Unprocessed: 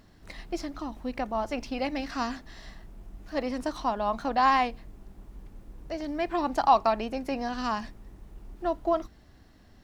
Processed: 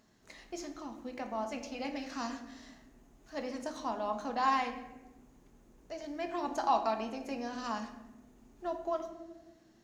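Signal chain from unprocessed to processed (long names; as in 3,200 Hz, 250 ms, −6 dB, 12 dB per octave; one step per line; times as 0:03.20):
high-pass filter 150 Hz 6 dB per octave
parametric band 6,600 Hz +11 dB 0.3 octaves
mains-hum notches 50/100/150/200 Hz
on a send: convolution reverb RT60 1.2 s, pre-delay 4 ms, DRR 4.5 dB
on the sum: level −8.5 dB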